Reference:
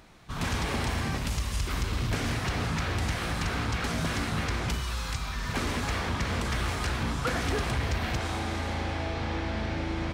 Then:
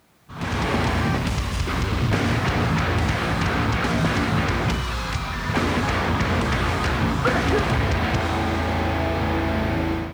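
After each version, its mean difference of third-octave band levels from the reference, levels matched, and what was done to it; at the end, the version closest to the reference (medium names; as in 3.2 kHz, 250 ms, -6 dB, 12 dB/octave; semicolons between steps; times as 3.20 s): 3.0 dB: added noise blue -52 dBFS; high-pass 79 Hz; level rider gain up to 14.5 dB; low-pass 2.5 kHz 6 dB/octave; trim -4 dB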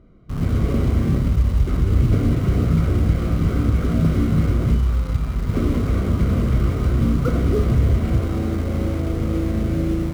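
9.5 dB: boxcar filter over 51 samples; level rider gain up to 4 dB; flutter echo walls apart 5.3 m, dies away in 0.21 s; in parallel at -9.5 dB: word length cut 6-bit, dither none; on the sum: trim +6.5 dB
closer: first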